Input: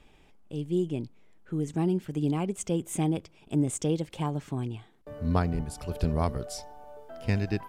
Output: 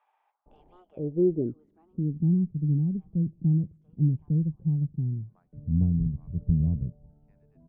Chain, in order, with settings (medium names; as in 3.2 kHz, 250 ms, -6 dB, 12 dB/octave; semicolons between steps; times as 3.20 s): Chebyshev shaper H 8 -32 dB, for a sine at -13.5 dBFS; bands offset in time highs, lows 460 ms, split 980 Hz; low-pass sweep 860 Hz -> 160 Hz, 0.62–2.38 s